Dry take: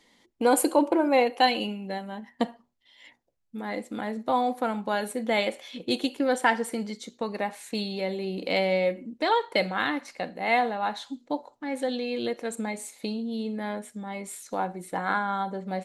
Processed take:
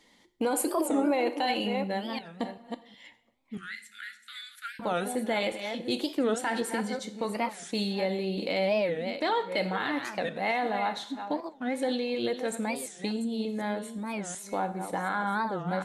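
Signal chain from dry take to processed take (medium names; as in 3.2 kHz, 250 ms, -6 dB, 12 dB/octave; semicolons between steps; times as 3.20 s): chunks repeated in reverse 368 ms, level -11 dB; 3.59–4.81 s: steep high-pass 1.4 kHz 96 dB/octave; peak limiter -19 dBFS, peak gain reduction 11 dB; two-slope reverb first 0.6 s, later 2.5 s, from -25 dB, DRR 11 dB; warped record 45 rpm, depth 250 cents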